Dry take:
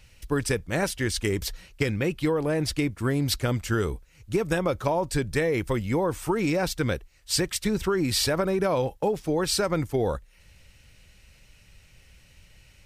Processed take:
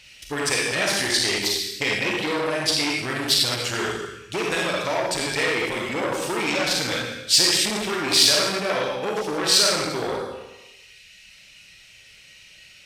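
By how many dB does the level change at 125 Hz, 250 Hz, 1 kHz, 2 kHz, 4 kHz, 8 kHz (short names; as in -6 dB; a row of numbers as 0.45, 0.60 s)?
-7.5, -2.5, +4.0, +8.0, +12.5, +9.0 dB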